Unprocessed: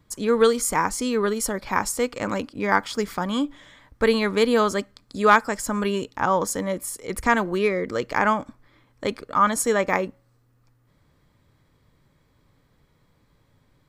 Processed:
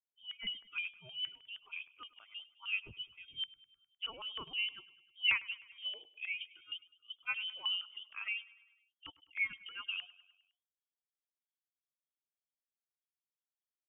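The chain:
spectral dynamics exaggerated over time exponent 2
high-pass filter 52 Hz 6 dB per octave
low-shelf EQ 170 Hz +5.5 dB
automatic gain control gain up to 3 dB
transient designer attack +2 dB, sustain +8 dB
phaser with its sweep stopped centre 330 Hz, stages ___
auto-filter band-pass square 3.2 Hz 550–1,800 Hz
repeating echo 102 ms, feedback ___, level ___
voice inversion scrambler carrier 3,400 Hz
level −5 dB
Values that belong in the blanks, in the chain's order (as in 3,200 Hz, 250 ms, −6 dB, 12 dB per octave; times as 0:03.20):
8, 58%, −20.5 dB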